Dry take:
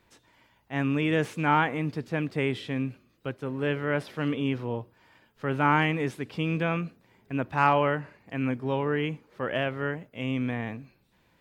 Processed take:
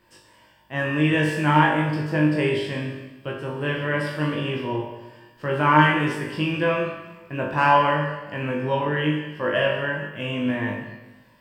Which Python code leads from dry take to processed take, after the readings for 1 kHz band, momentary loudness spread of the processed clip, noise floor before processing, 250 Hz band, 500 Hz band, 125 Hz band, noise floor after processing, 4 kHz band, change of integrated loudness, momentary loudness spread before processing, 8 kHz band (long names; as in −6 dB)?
+6.0 dB, 14 LU, −66 dBFS, +4.5 dB, +5.0 dB, +5.5 dB, −55 dBFS, +7.5 dB, +5.5 dB, 11 LU, can't be measured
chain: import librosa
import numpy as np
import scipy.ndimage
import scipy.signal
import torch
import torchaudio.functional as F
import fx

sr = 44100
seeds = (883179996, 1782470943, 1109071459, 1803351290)

y = fx.ripple_eq(x, sr, per_octave=1.3, db=8)
y = fx.room_flutter(y, sr, wall_m=3.4, rt60_s=0.35)
y = fx.rev_plate(y, sr, seeds[0], rt60_s=1.2, hf_ratio=0.95, predelay_ms=0, drr_db=3.0)
y = y * librosa.db_to_amplitude(1.5)